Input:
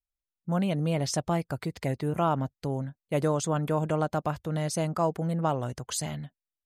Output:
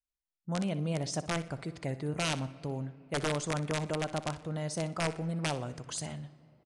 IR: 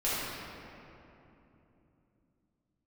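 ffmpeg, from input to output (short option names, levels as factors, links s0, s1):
-filter_complex "[0:a]aeval=exprs='(mod(7.94*val(0)+1,2)-1)/7.94':c=same,aecho=1:1:61|122|183:0.178|0.0551|0.0171,asplit=2[s0][s1];[1:a]atrim=start_sample=2205[s2];[s1][s2]afir=irnorm=-1:irlink=0,volume=0.0422[s3];[s0][s3]amix=inputs=2:normalize=0,aresample=22050,aresample=44100,volume=0.501"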